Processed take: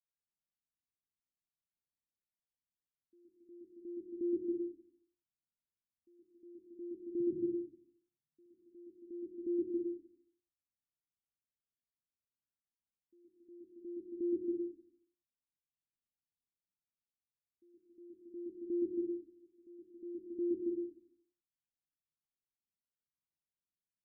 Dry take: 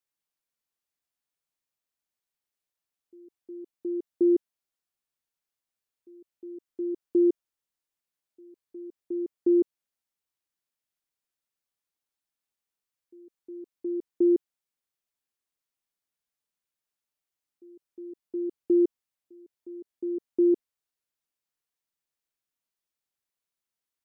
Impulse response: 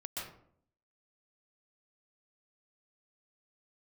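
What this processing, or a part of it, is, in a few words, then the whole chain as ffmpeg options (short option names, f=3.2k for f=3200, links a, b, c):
next room: -filter_complex "[0:a]asettb=1/sr,asplit=3[a][b][c];[a]atrim=end=7.204[d];[b]atrim=start=7.2:end=8.46,asetpts=PTS-STARTPTS,afade=t=in:d=0.004:c=qsin,afade=t=out:st=1.256:d=0.004:c=qsin,equalizer=f=140:t=o:w=0.64:g=14[e];[c]atrim=start=8.456[f];[d][e]acrossfade=d=0.004:c1=hsin:c2=qsin[g];[g][f]acrossfade=d=0.004:c1=qsin:c2=hsin,lowpass=f=300:w=0.5412,lowpass=f=300:w=1.3066[h];[1:a]atrim=start_sample=2205[i];[h][i]afir=irnorm=-1:irlink=0,volume=-3.5dB"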